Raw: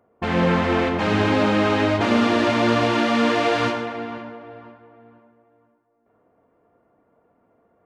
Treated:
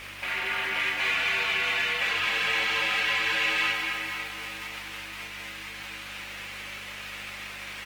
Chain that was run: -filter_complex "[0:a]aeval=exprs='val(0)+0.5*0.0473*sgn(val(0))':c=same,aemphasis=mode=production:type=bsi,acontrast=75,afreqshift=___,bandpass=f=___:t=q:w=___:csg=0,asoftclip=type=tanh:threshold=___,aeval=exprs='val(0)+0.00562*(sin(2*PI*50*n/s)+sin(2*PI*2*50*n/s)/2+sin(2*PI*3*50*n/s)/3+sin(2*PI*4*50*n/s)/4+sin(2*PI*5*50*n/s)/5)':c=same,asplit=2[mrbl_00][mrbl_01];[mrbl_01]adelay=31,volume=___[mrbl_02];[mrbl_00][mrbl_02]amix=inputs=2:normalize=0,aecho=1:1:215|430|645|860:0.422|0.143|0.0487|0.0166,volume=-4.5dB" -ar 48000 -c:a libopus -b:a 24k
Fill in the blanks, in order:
-140, 2400, 2.5, -13dB, -6dB